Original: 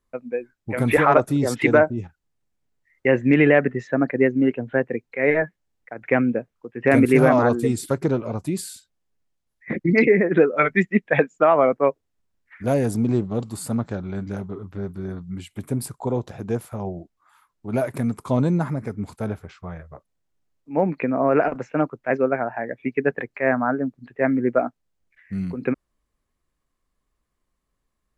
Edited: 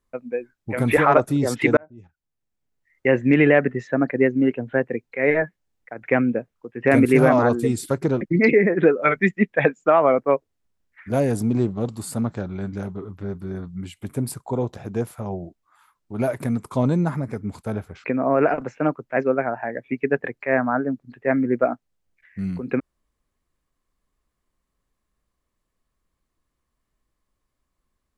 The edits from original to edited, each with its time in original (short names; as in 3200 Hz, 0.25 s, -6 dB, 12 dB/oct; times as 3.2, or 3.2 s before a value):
1.77–3.08 fade in
8.21–9.75 cut
19.58–20.98 cut